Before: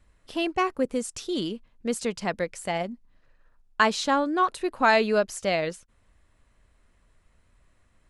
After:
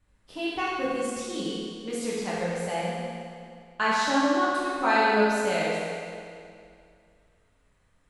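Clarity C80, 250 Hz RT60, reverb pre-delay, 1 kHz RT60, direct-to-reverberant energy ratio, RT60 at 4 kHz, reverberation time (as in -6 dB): -1.0 dB, 2.4 s, 8 ms, 2.3 s, -8.0 dB, 2.1 s, 2.3 s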